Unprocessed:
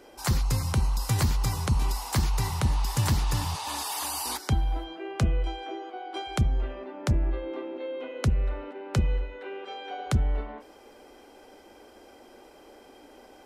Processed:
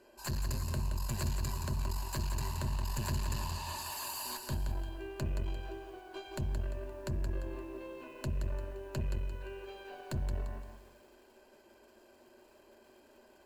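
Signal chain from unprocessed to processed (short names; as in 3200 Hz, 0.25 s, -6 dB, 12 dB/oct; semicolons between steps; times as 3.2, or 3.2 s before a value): tube stage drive 25 dB, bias 0.65; ripple EQ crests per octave 1.4, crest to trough 11 dB; lo-fi delay 0.173 s, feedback 35%, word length 9-bit, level -6 dB; gain -7.5 dB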